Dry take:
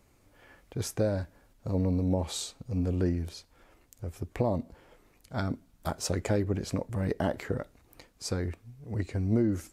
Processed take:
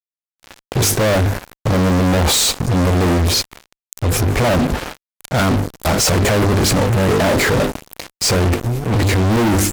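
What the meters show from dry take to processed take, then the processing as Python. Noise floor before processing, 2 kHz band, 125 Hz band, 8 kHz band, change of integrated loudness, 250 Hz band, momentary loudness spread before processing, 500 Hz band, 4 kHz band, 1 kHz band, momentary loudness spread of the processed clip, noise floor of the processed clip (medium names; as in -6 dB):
-64 dBFS, +23.0 dB, +15.5 dB, +21.5 dB, +16.0 dB, +13.5 dB, 13 LU, +15.0 dB, +23.0 dB, +20.0 dB, 8 LU, under -85 dBFS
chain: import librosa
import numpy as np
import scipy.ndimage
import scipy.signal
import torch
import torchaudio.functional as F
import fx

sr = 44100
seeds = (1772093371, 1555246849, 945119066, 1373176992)

y = fx.hum_notches(x, sr, base_hz=50, count=10)
y = fx.transient(y, sr, attack_db=-2, sustain_db=7)
y = fx.fuzz(y, sr, gain_db=48.0, gate_db=-49.0)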